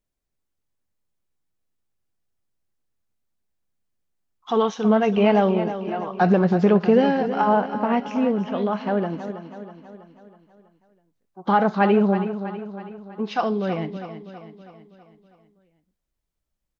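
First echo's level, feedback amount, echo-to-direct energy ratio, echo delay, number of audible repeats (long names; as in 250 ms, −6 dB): −11.0 dB, 53%, −9.5 dB, 324 ms, 5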